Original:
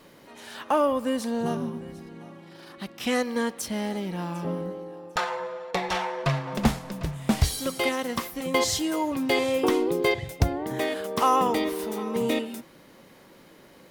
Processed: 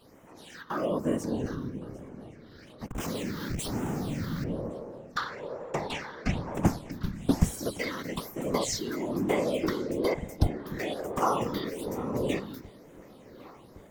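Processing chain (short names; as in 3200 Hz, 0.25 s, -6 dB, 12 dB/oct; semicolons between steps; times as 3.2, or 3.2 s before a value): 2.88–4.44 Schmitt trigger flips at -40 dBFS; phaser stages 6, 1.1 Hz, lowest notch 650–4300 Hz; whisperiser; on a send: darkening echo 1.113 s, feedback 70%, low-pass 3900 Hz, level -23 dB; on the sum: gain -3 dB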